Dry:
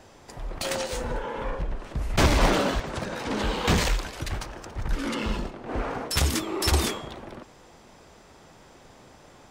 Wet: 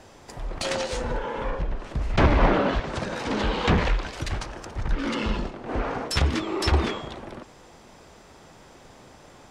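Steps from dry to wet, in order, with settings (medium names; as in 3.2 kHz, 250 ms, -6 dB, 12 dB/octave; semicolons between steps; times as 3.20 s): low-pass that closes with the level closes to 2.1 kHz, closed at -18.5 dBFS; trim +2 dB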